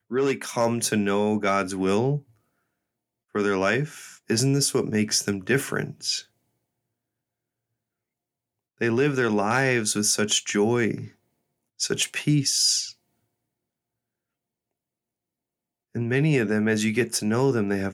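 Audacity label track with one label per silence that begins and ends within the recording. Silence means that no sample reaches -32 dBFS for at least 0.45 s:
2.180000	3.350000	silence
6.200000	8.810000	silence
11.050000	11.800000	silence
12.900000	15.960000	silence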